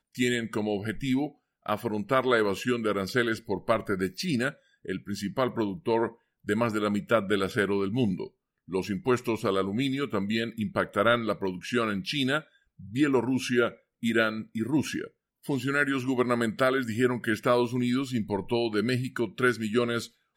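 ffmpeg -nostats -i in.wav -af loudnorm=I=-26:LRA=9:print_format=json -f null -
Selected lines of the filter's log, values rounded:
"input_i" : "-28.0",
"input_tp" : "-10.1",
"input_lra" : "2.2",
"input_thresh" : "-38.2",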